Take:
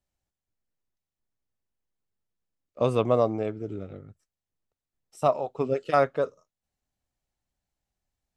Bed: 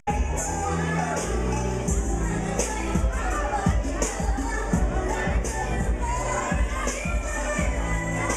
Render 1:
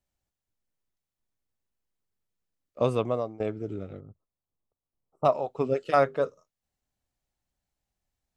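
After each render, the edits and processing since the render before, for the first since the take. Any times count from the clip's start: 2.80–3.40 s: fade out, to -19 dB; 4.00–5.25 s: elliptic low-pass 1.2 kHz; 5.86–6.27 s: hum notches 50/100/150/200/250/300/350/400/450/500 Hz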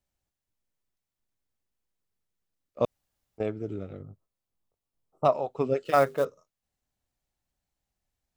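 2.85–3.38 s: room tone; 3.98–5.25 s: doubling 21 ms -3 dB; 5.85–6.25 s: companded quantiser 6-bit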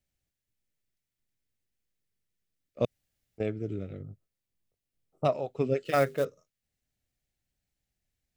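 graphic EQ 125/1000/2000 Hz +3/-11/+4 dB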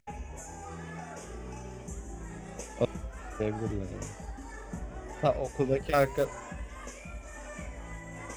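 add bed -16.5 dB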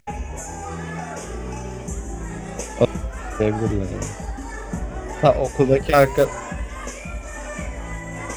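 trim +11.5 dB; peak limiter -2 dBFS, peak gain reduction 1.5 dB

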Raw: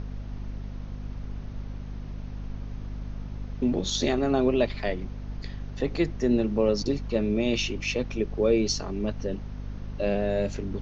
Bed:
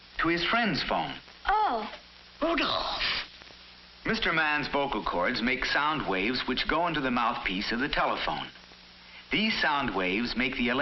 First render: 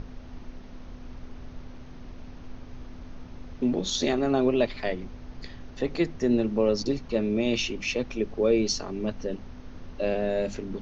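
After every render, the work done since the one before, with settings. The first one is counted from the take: hum notches 50/100/150/200 Hz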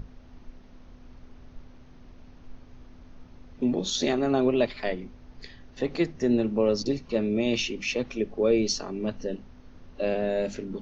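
noise print and reduce 7 dB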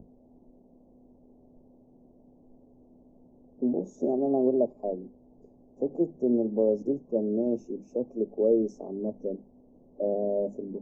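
inverse Chebyshev band-stop 1.4–4.5 kHz, stop band 50 dB; three-band isolator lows -19 dB, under 180 Hz, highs -17 dB, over 4.5 kHz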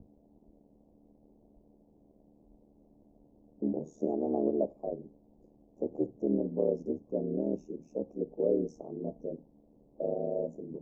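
ring modulator 38 Hz; feedback comb 67 Hz, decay 0.29 s, harmonics all, mix 30%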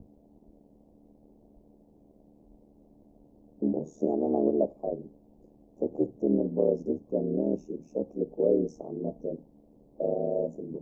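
trim +4 dB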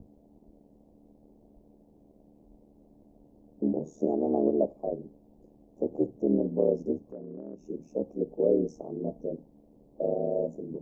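7.09–7.68 s: compression 2.5:1, threshold -44 dBFS

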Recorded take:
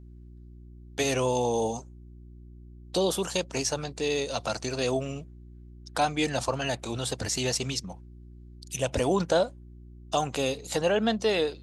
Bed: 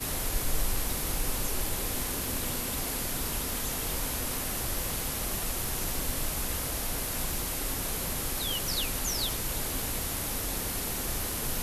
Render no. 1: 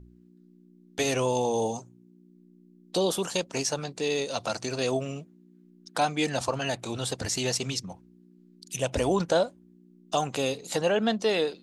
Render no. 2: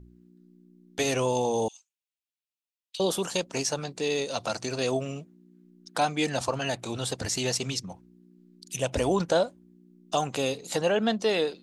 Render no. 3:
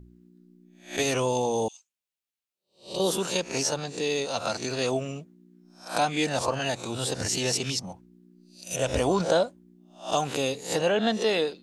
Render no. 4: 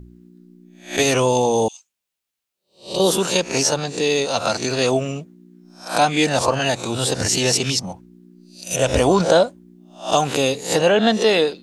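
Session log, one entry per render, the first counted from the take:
de-hum 60 Hz, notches 2
1.68–3.00 s: ladder high-pass 2.2 kHz, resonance 45%
reverse spectral sustain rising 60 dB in 0.34 s
trim +8.5 dB; peak limiter -3 dBFS, peak gain reduction 2 dB

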